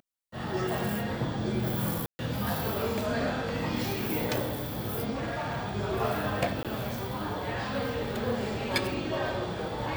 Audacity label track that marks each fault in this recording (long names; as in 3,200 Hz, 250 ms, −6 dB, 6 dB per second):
2.060000	2.190000	drop-out 130 ms
5.100000	5.660000	clipping −29.5 dBFS
6.630000	6.650000	drop-out 17 ms